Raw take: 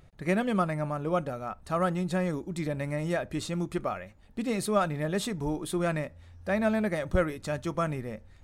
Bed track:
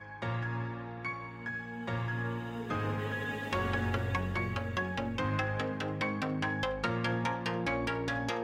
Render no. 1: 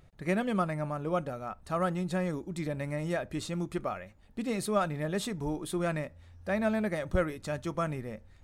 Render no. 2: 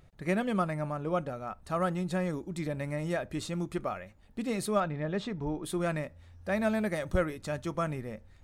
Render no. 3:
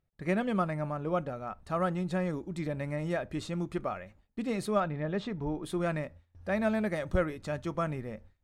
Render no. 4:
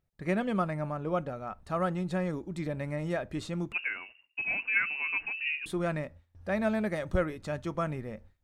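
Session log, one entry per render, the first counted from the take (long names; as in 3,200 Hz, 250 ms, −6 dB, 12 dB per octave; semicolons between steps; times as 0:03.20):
level −2.5 dB
0:00.92–0:01.48: high-shelf EQ 9,900 Hz −7.5 dB; 0:04.80–0:05.64: high-frequency loss of the air 170 metres; 0:06.52–0:07.18: high-shelf EQ 4,300 Hz +5 dB
noise gate with hold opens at −45 dBFS; high-shelf EQ 6,300 Hz −9.5 dB
0:03.72–0:05.66: voice inversion scrambler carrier 2,800 Hz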